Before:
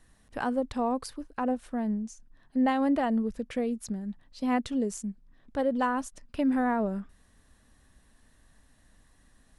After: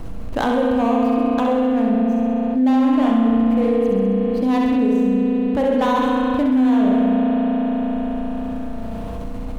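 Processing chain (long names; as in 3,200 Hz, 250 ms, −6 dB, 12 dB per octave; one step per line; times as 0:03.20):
running median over 25 samples
on a send: flutter between parallel walls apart 11.3 metres, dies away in 0.96 s
on the sum: spring reverb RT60 2.9 s, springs 35 ms, chirp 60 ms, DRR −1.5 dB
envelope flattener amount 70%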